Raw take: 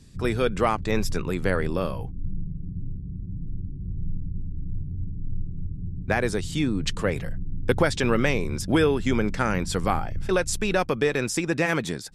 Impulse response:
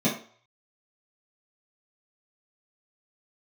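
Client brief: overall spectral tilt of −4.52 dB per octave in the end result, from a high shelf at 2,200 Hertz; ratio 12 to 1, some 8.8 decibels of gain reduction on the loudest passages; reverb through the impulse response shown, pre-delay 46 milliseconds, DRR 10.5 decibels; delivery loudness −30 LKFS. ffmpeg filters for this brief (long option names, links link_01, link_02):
-filter_complex "[0:a]highshelf=frequency=2200:gain=9,acompressor=threshold=-24dB:ratio=12,asplit=2[link_01][link_02];[1:a]atrim=start_sample=2205,adelay=46[link_03];[link_02][link_03]afir=irnorm=-1:irlink=0,volume=-23dB[link_04];[link_01][link_04]amix=inputs=2:normalize=0,volume=-0.5dB"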